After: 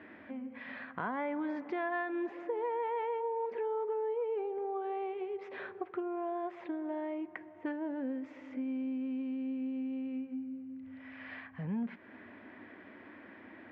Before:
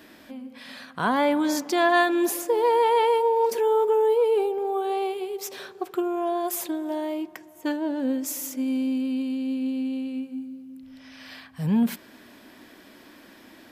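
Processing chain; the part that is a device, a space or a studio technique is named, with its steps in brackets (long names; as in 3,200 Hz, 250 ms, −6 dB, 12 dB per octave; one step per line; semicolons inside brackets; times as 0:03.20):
bass amplifier (downward compressor 3 to 1, threshold −34 dBFS, peak gain reduction 14.5 dB; loudspeaker in its box 78–2,300 Hz, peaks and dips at 99 Hz +7 dB, 140 Hz −7 dB, 2,000 Hz +5 dB)
level −2.5 dB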